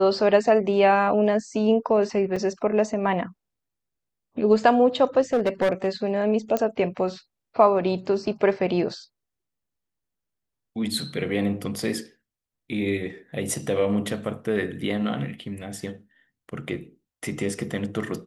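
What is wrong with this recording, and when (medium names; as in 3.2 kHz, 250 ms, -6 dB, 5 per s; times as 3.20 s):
2.36 s: dropout 4.6 ms
5.33–5.87 s: clipped -16.5 dBFS
6.57 s: pop -11 dBFS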